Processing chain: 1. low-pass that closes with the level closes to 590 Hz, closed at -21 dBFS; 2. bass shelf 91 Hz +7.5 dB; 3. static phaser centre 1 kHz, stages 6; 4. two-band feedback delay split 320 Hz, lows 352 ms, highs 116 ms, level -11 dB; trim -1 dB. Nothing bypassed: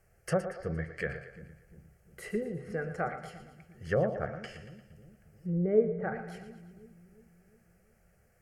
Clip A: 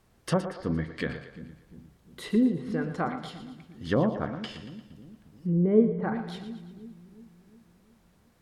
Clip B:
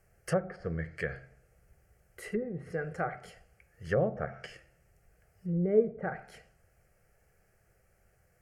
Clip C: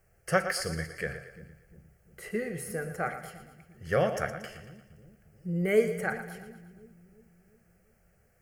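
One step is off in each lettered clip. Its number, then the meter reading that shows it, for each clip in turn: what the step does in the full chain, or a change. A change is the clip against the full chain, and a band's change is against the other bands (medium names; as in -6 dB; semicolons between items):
3, 4 kHz band +7.5 dB; 4, echo-to-direct -9.5 dB to none; 1, 4 kHz band +10.0 dB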